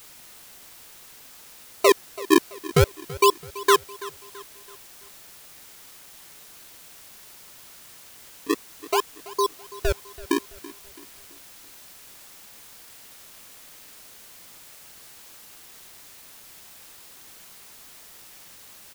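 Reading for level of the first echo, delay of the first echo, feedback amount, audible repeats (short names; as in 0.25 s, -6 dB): -18.5 dB, 0.332 s, 44%, 3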